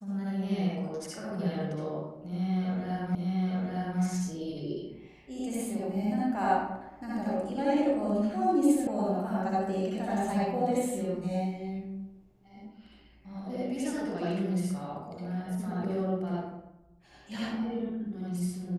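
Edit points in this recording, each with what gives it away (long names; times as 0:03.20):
0:03.15: the same again, the last 0.86 s
0:08.87: cut off before it has died away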